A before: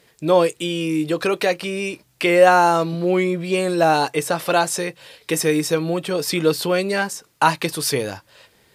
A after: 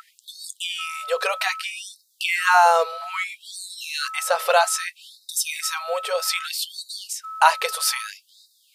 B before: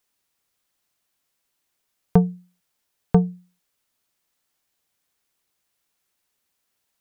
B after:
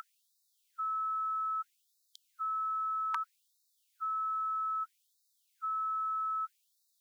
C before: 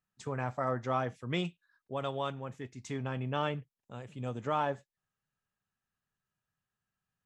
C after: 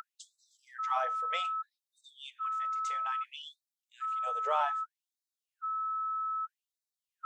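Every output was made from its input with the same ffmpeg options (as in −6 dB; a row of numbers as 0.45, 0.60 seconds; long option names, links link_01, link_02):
-af "aeval=exprs='val(0)+0.0251*sin(2*PI*1300*n/s)':channel_layout=same,bandreject=frequency=57.19:width_type=h:width=4,bandreject=frequency=114.38:width_type=h:width=4,bandreject=frequency=171.57:width_type=h:width=4,bandreject=frequency=228.76:width_type=h:width=4,bandreject=frequency=285.95:width_type=h:width=4,bandreject=frequency=343.14:width_type=h:width=4,bandreject=frequency=400.33:width_type=h:width=4,afftfilt=real='re*gte(b*sr/1024,420*pow(3700/420,0.5+0.5*sin(2*PI*0.62*pts/sr)))':imag='im*gte(b*sr/1024,420*pow(3700/420,0.5+0.5*sin(2*PI*0.62*pts/sr)))':win_size=1024:overlap=0.75,volume=1dB"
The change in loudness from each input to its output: −3.0, −12.5, +2.0 LU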